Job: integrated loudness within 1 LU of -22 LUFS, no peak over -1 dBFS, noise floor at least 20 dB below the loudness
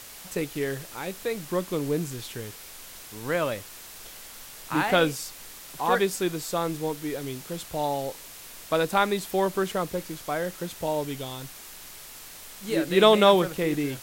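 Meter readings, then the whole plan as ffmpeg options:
noise floor -44 dBFS; noise floor target -47 dBFS; loudness -26.5 LUFS; peak level -4.5 dBFS; loudness target -22.0 LUFS
-> -af "afftdn=nr=6:nf=-44"
-af "volume=1.68,alimiter=limit=0.891:level=0:latency=1"

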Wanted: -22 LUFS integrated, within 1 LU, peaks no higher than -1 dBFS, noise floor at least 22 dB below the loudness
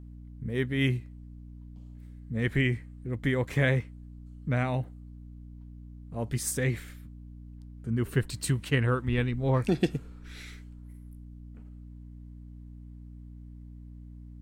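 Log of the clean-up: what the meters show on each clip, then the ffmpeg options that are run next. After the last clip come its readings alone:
hum 60 Hz; highest harmonic 300 Hz; hum level -44 dBFS; loudness -29.5 LUFS; peak level -12.0 dBFS; loudness target -22.0 LUFS
-> -af "bandreject=f=60:t=h:w=4,bandreject=f=120:t=h:w=4,bandreject=f=180:t=h:w=4,bandreject=f=240:t=h:w=4,bandreject=f=300:t=h:w=4"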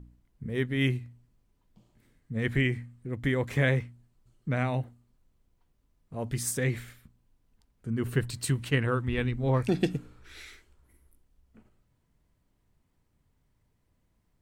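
hum not found; loudness -30.0 LUFS; peak level -12.5 dBFS; loudness target -22.0 LUFS
-> -af "volume=2.51"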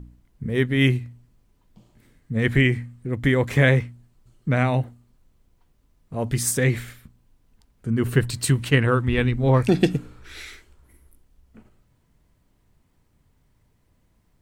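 loudness -22.0 LUFS; peak level -4.5 dBFS; noise floor -64 dBFS

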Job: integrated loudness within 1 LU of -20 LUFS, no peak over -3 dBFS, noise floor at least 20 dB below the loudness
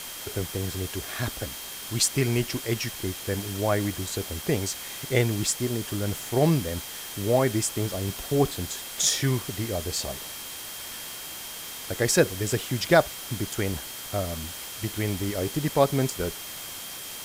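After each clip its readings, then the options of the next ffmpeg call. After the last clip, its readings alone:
steady tone 3.2 kHz; tone level -45 dBFS; noise floor -38 dBFS; noise floor target -48 dBFS; loudness -27.5 LUFS; peak level -6.0 dBFS; loudness target -20.0 LUFS
-> -af "bandreject=f=3200:w=30"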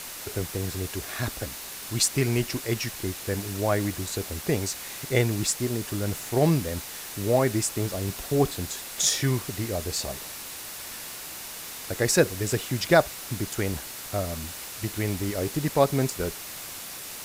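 steady tone not found; noise floor -39 dBFS; noise floor target -48 dBFS
-> -af "afftdn=nr=9:nf=-39"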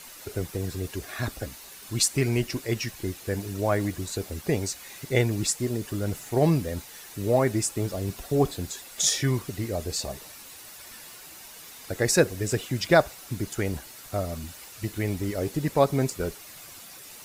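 noise floor -46 dBFS; noise floor target -48 dBFS
-> -af "afftdn=nr=6:nf=-46"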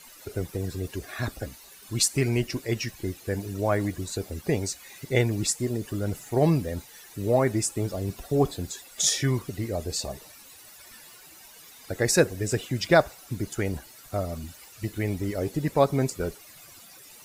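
noise floor -50 dBFS; loudness -27.5 LUFS; peak level -6.5 dBFS; loudness target -20.0 LUFS
-> -af "volume=2.37,alimiter=limit=0.708:level=0:latency=1"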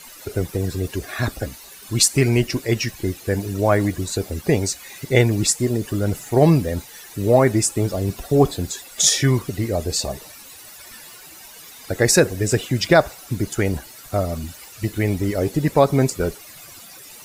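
loudness -20.5 LUFS; peak level -3.0 dBFS; noise floor -42 dBFS

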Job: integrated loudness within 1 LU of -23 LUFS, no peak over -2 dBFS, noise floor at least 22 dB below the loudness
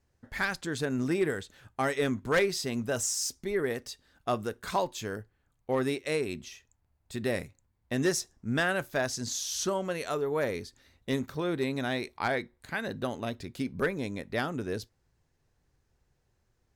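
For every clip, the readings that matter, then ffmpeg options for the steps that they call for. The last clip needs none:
loudness -31.5 LUFS; peak level -19.0 dBFS; loudness target -23.0 LUFS
-> -af "volume=2.66"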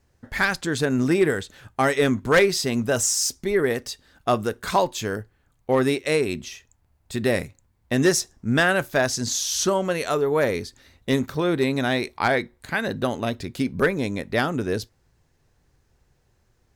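loudness -23.5 LUFS; peak level -10.5 dBFS; noise floor -66 dBFS

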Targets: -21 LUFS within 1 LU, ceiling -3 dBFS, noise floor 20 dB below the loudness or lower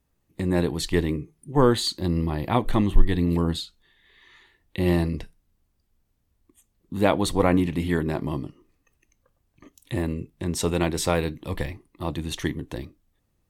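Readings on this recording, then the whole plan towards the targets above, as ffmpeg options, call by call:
loudness -25.5 LUFS; peak level -4.0 dBFS; loudness target -21.0 LUFS
-> -af "volume=1.68,alimiter=limit=0.708:level=0:latency=1"

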